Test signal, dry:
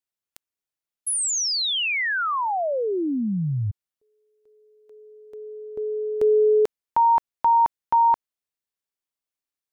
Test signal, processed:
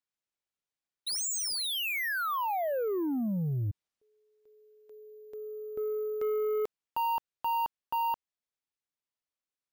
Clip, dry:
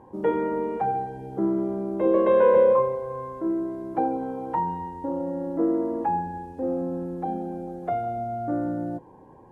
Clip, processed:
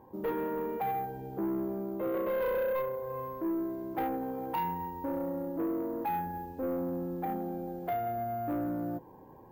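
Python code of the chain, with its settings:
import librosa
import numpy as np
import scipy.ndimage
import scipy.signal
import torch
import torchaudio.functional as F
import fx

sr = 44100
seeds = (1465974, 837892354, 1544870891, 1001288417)

y = fx.rider(x, sr, range_db=3, speed_s=0.5)
y = np.repeat(y[::3], 3)[:len(y)]
y = 10.0 ** (-21.0 / 20.0) * np.tanh(y / 10.0 ** (-21.0 / 20.0))
y = y * 10.0 ** (-6.0 / 20.0)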